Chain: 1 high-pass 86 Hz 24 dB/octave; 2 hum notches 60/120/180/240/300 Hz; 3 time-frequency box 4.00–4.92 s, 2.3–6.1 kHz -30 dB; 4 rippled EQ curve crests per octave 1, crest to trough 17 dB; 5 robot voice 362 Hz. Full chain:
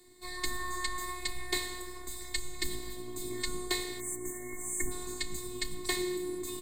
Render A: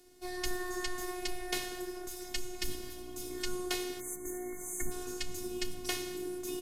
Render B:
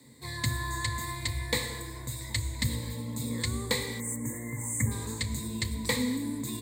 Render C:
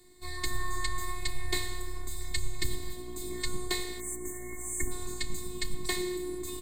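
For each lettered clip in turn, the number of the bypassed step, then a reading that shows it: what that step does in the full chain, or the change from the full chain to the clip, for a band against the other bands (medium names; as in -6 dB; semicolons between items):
4, 500 Hz band +3.5 dB; 5, 125 Hz band +15.0 dB; 1, 125 Hz band +7.5 dB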